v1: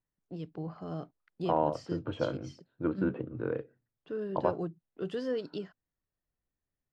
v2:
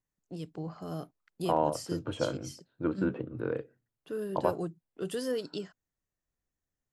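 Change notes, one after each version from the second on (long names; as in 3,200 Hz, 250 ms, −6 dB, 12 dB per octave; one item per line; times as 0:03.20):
master: remove high-frequency loss of the air 190 metres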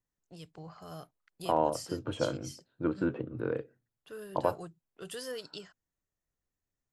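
first voice: add parametric band 270 Hz −13.5 dB 1.9 octaves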